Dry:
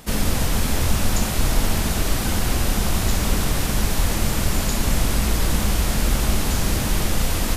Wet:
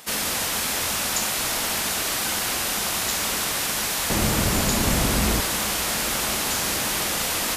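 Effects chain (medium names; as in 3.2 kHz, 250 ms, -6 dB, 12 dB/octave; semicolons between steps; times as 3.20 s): high-pass 1.1 kHz 6 dB/octave, from 4.10 s 130 Hz, from 5.41 s 790 Hz; trim +3.5 dB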